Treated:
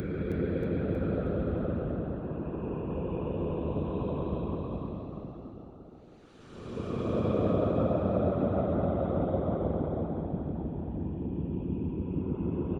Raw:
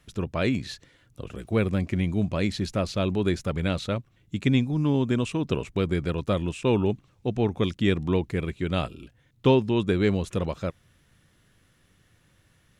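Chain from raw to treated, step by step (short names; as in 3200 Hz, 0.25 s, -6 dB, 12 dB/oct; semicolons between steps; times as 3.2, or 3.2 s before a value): treble ducked by the level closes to 700 Hz, closed at -21.5 dBFS; Paulstretch 31×, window 0.05 s, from 6.06; high shelf 4200 Hz +10.5 dB; frequency-shifting echo 0.317 s, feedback 55%, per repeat +58 Hz, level -7.5 dB; harmonic-percussive split harmonic -11 dB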